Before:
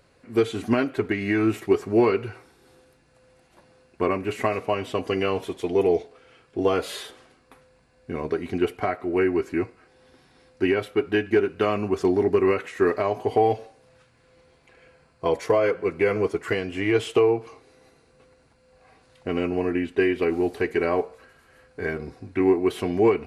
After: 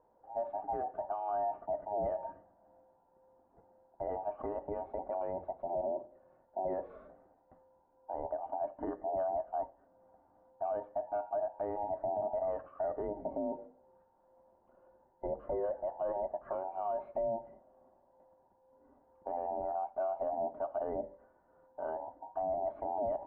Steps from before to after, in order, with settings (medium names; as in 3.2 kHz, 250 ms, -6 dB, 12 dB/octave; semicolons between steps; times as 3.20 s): every band turned upside down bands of 1 kHz; low-pass 1 kHz 24 dB/octave; peak limiter -20 dBFS, peak gain reduction 11.5 dB; trim -7.5 dB